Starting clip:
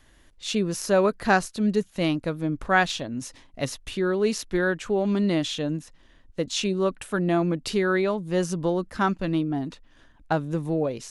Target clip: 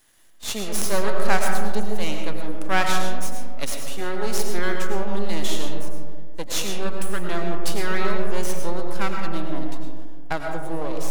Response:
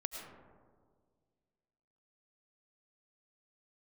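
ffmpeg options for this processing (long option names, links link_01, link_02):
-filter_complex "[0:a]aemphasis=mode=production:type=bsi,aeval=exprs='max(val(0),0)':channel_layout=same[link_01];[1:a]atrim=start_sample=2205[link_02];[link_01][link_02]afir=irnorm=-1:irlink=0,volume=3dB"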